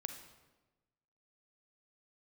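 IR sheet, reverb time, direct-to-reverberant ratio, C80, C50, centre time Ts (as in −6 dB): 1.2 s, 6.5 dB, 10.0 dB, 7.5 dB, 20 ms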